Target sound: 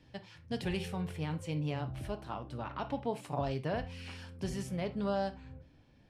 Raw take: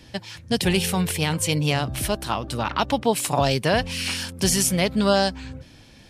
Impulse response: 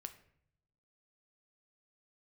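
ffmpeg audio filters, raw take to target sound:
-filter_complex "[0:a]asetnsamples=nb_out_samples=441:pad=0,asendcmd='0.88 lowpass f 1100',lowpass=frequency=2100:poles=1[link_01];[1:a]atrim=start_sample=2205,atrim=end_sample=3969[link_02];[link_01][link_02]afir=irnorm=-1:irlink=0,volume=-8dB"

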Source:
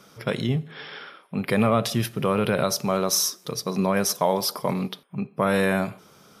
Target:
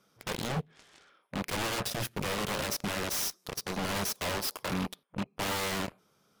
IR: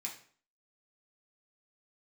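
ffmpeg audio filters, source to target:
-af "aeval=exprs='0.0708*(abs(mod(val(0)/0.0708+3,4)-2)-1)':channel_layout=same,aeval=exprs='0.075*(cos(1*acos(clip(val(0)/0.075,-1,1)))-cos(1*PI/2))+0.0266*(cos(3*acos(clip(val(0)/0.075,-1,1)))-cos(3*PI/2))+0.00133*(cos(7*acos(clip(val(0)/0.075,-1,1)))-cos(7*PI/2))':channel_layout=same,volume=-1.5dB"

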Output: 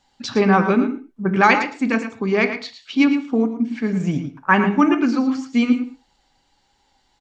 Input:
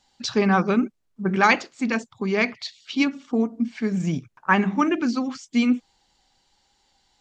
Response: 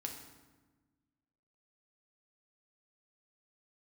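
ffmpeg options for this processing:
-filter_complex "[0:a]aecho=1:1:111:0.316,asplit=2[link_01][link_02];[1:a]atrim=start_sample=2205,atrim=end_sample=6615,lowpass=3400[link_03];[link_02][link_03]afir=irnorm=-1:irlink=0,volume=0dB[link_04];[link_01][link_04]amix=inputs=2:normalize=0,volume=-1dB"

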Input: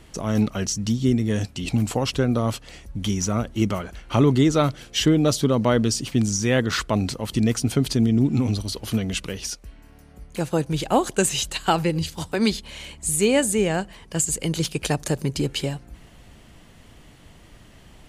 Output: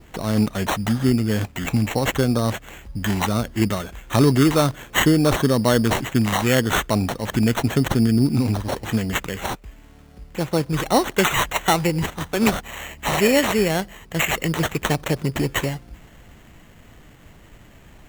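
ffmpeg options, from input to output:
ffmpeg -i in.wav -af "adynamicequalizer=threshold=0.00891:dfrequency=4000:dqfactor=1.1:tfrequency=4000:tqfactor=1.1:attack=5:release=100:ratio=0.375:range=3:mode=boostabove:tftype=bell,acrusher=samples=9:mix=1:aa=0.000001,volume=1.5dB" out.wav

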